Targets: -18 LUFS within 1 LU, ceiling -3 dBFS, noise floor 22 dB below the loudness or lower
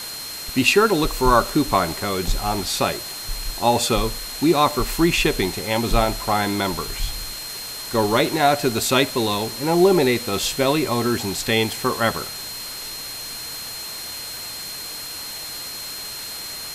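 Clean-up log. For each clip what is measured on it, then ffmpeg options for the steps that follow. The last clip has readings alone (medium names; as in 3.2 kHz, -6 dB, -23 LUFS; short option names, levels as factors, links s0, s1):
steady tone 4.2 kHz; tone level -33 dBFS; noise floor -33 dBFS; noise floor target -44 dBFS; loudness -21.5 LUFS; peak level -2.5 dBFS; loudness target -18.0 LUFS
-> -af "bandreject=f=4200:w=30"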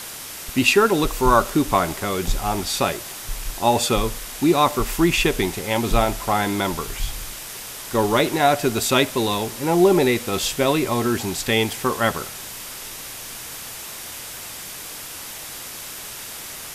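steady tone not found; noise floor -35 dBFS; noise floor target -43 dBFS
-> -af "afftdn=nr=8:nf=-35"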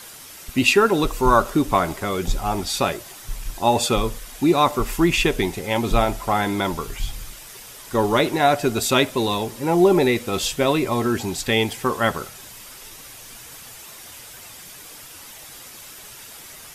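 noise floor -41 dBFS; noise floor target -43 dBFS
-> -af "afftdn=nr=6:nf=-41"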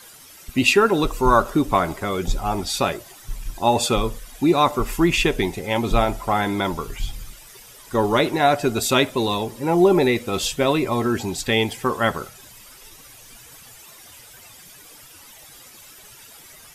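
noise floor -46 dBFS; loudness -20.5 LUFS; peak level -2.5 dBFS; loudness target -18.0 LUFS
-> -af "volume=1.33,alimiter=limit=0.708:level=0:latency=1"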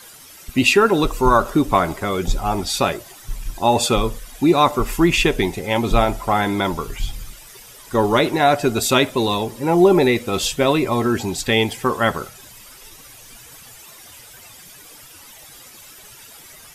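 loudness -18.5 LUFS; peak level -3.0 dBFS; noise floor -43 dBFS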